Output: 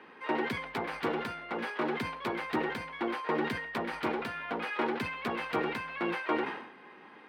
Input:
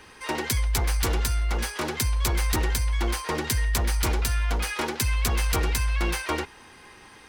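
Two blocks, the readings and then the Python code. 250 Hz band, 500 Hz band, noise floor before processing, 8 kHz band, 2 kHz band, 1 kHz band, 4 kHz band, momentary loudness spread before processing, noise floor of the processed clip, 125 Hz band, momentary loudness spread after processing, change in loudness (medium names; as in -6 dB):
-1.0 dB, -0.5 dB, -50 dBFS, -28.5 dB, -3.5 dB, -1.5 dB, -11.5 dB, 4 LU, -53 dBFS, -20.0 dB, 5 LU, -7.5 dB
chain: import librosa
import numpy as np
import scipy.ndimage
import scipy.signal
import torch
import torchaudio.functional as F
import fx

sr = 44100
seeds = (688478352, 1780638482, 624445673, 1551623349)

y = scipy.signal.sosfilt(scipy.signal.butter(4, 190.0, 'highpass', fs=sr, output='sos'), x)
y = fx.air_absorb(y, sr, metres=480.0)
y = fx.sustainer(y, sr, db_per_s=71.0)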